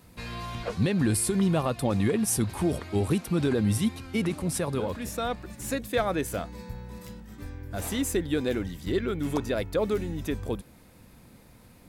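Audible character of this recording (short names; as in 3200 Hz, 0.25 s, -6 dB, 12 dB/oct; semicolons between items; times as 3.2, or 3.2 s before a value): noise floor -54 dBFS; spectral tilt -5.5 dB/oct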